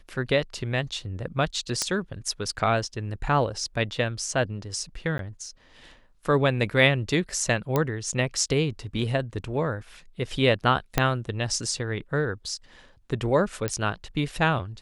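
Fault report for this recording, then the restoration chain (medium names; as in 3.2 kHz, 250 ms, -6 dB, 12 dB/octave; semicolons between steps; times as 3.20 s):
1.82 s: pop -9 dBFS
5.18–5.19 s: dropout 12 ms
7.76 s: pop -10 dBFS
10.98 s: pop -5 dBFS
13.68 s: pop -11 dBFS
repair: de-click; interpolate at 5.18 s, 12 ms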